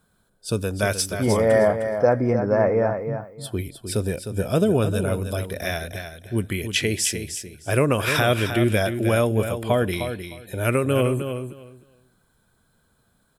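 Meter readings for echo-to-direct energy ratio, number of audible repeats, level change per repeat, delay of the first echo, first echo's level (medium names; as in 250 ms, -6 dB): -8.5 dB, 2, -15.0 dB, 307 ms, -8.5 dB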